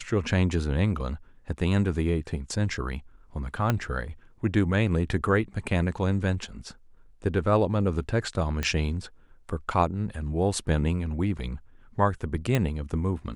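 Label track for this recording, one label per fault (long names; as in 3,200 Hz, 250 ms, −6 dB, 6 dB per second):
3.700000	3.700000	click −10 dBFS
8.630000	8.630000	click −13 dBFS
12.550000	12.550000	click −11 dBFS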